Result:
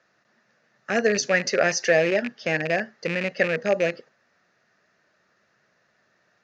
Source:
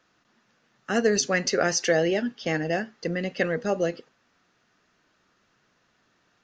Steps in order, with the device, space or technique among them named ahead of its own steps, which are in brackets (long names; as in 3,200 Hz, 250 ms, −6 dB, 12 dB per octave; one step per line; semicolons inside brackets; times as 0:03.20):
car door speaker with a rattle (loose part that buzzes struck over −31 dBFS, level −18 dBFS; loudspeaker in its box 100–6,800 Hz, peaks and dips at 280 Hz −7 dB, 600 Hz +7 dB, 1,000 Hz −3 dB, 1,800 Hz +6 dB, 3,200 Hz −7 dB)